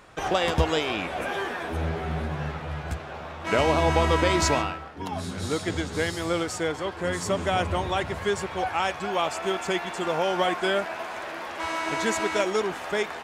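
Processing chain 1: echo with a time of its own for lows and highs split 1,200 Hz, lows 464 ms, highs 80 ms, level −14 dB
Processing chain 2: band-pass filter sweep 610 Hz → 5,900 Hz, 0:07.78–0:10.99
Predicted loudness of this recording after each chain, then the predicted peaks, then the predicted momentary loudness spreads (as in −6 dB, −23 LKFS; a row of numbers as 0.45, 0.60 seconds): −26.5, −33.5 LKFS; −9.0, −15.0 dBFS; 11, 15 LU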